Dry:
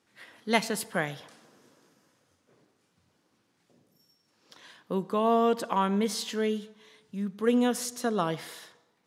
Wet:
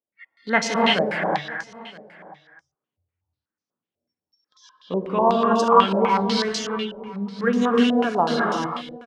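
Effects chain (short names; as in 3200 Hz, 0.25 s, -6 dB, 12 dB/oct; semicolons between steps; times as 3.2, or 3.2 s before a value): reverse delay 0.141 s, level -8 dB; spectral noise reduction 27 dB; in parallel at -8.5 dB: bit-crush 7-bit; on the sum: reverb removal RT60 0.73 s; echo 0.971 s -21 dB; non-linear reverb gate 0.38 s rising, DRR -3 dB; stepped low-pass 8.1 Hz 620–5900 Hz; gain -1 dB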